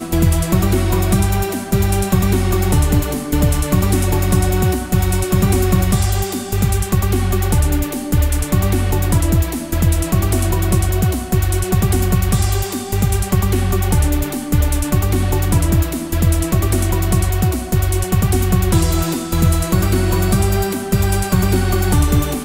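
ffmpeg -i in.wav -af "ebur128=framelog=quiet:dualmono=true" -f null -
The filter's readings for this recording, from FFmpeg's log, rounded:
Integrated loudness:
  I:         -13.8 LUFS
  Threshold: -23.8 LUFS
Loudness range:
  LRA:         1.0 LU
  Threshold: -33.8 LUFS
  LRA low:   -14.3 LUFS
  LRA high:  -13.2 LUFS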